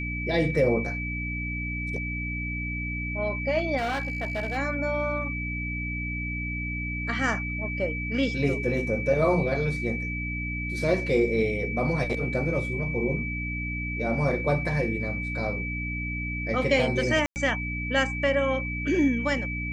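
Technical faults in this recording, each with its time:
mains hum 60 Hz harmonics 5 −33 dBFS
whistle 2,300 Hz −32 dBFS
0:03.77–0:04.58: clipping −25 dBFS
0:17.26–0:17.36: drop-out 99 ms

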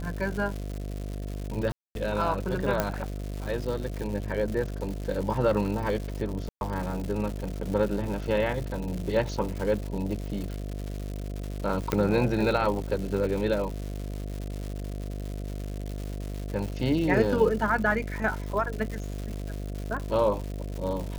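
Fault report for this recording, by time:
mains buzz 50 Hz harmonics 14 −34 dBFS
surface crackle 240 per second −33 dBFS
0:01.72–0:01.95: drop-out 232 ms
0:02.80: click −10 dBFS
0:06.49–0:06.61: drop-out 121 ms
0:11.92: click −11 dBFS

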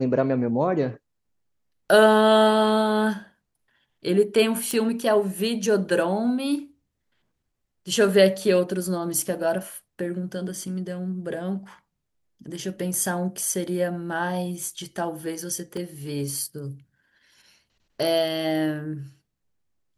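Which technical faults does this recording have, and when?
0:04.71: click −12 dBFS
0:15.77: drop-out 2.1 ms

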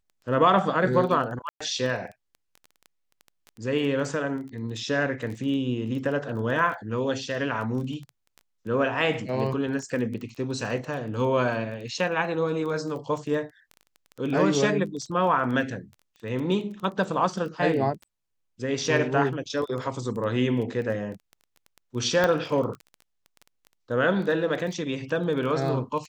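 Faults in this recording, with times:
surface crackle 12 per second −33 dBFS
0:01.49–0:01.60: drop-out 115 ms
0:22.24: click −10 dBFS

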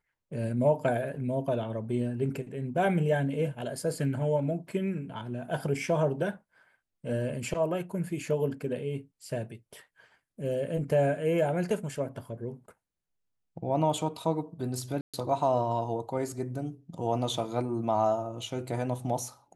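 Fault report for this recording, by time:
0:15.01–0:15.14: drop-out 126 ms

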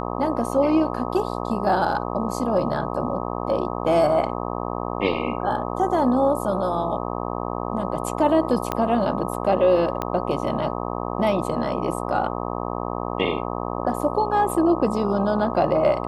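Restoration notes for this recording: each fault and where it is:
mains buzz 60 Hz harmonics 21 −28 dBFS
0:08.72: click −10 dBFS
0:10.02: click −12 dBFS

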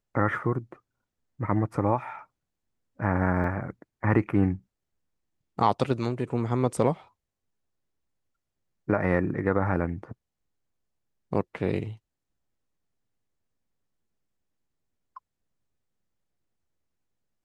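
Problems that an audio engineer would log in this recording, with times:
0:03.44: drop-out 2.8 ms

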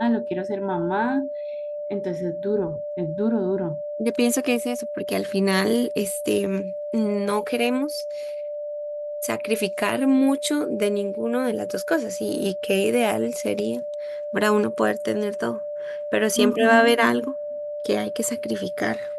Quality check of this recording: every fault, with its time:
whistle 590 Hz −28 dBFS

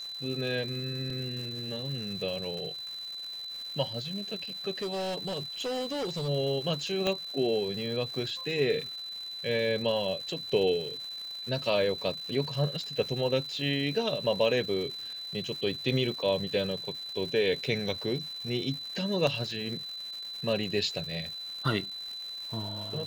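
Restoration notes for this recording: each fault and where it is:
surface crackle 420 per second −39 dBFS
whistle 4,000 Hz −37 dBFS
0:01.10: drop-out 2.4 ms
0:04.71–0:06.29: clipping −29.5 dBFS
0:07.07: click −15 dBFS
0:19.27: drop-out 2.1 ms

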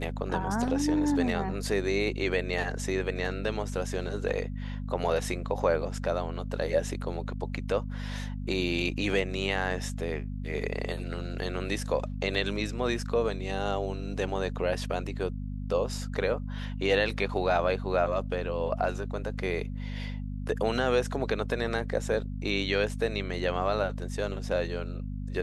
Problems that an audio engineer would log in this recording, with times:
mains hum 50 Hz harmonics 5 −35 dBFS

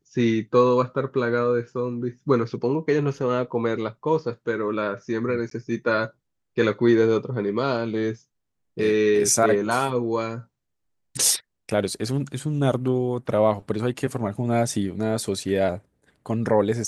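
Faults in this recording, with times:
0:05.50–0:05.51: drop-out 13 ms

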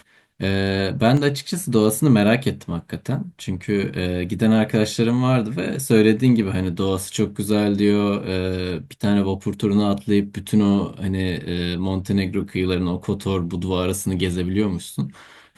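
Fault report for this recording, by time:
0:01.17: drop-out 2.8 ms

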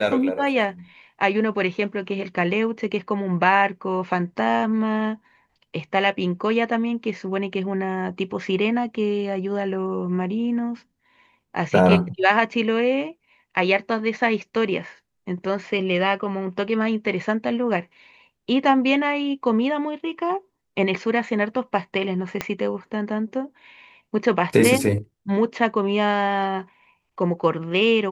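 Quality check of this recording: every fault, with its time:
0:22.41: click −9 dBFS

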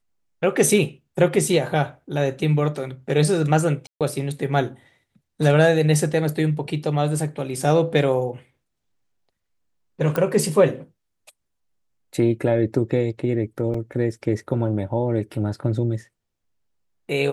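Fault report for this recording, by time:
0:03.87–0:04.01: drop-out 137 ms
0:10.16: click −11 dBFS
0:13.74: drop-out 4 ms

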